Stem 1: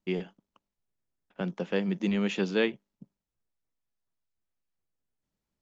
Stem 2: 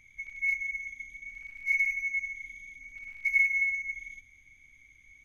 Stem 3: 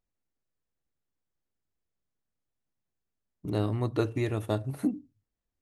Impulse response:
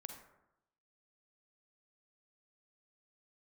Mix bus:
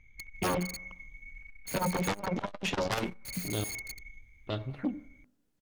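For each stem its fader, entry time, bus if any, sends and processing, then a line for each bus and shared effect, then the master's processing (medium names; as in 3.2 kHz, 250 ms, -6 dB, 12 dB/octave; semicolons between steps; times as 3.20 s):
-14.0 dB, 0.35 s, send -8 dB, peaking EQ 180 Hz +13.5 dB 0.24 oct; sine folder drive 16 dB, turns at -12 dBFS
0.0 dB, 0.00 s, no send, low-pass 1.3 kHz 6 dB/octave; bass shelf 85 Hz +11.5 dB; integer overflow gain 34.5 dB
-5.5 dB, 0.00 s, muted 3.64–4.47 s, send -6.5 dB, self-modulated delay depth 0.25 ms; touch-sensitive low-pass 430–3500 Hz up, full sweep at -29 dBFS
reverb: on, RT60 0.85 s, pre-delay 38 ms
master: transformer saturation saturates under 280 Hz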